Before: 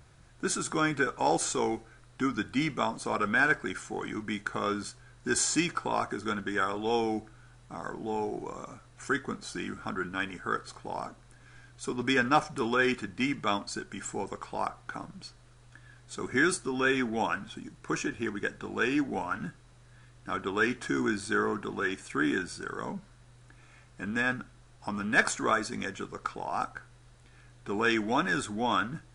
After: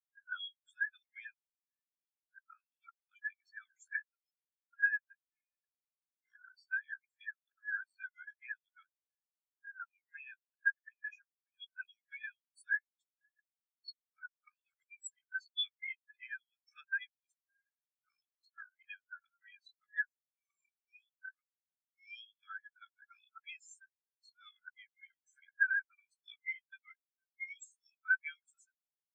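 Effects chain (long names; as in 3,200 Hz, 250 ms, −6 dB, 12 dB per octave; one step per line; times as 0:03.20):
played backwards from end to start
Butterworth high-pass 1,700 Hz 36 dB per octave
downward compressor 5 to 1, threshold −49 dBFS, peak gain reduction 23.5 dB
double-tracking delay 13 ms −11.5 dB
every bin expanded away from the loudest bin 4 to 1
level +14.5 dB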